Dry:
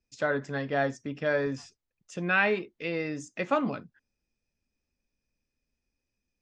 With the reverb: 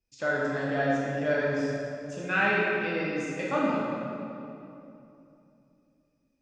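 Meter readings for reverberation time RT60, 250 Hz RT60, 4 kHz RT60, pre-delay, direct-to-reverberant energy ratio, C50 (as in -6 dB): 2.8 s, 3.3 s, 1.9 s, 10 ms, -6.0 dB, -2.0 dB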